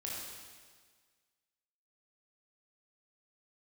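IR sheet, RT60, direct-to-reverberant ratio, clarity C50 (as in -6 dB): 1.6 s, -5.0 dB, -1.0 dB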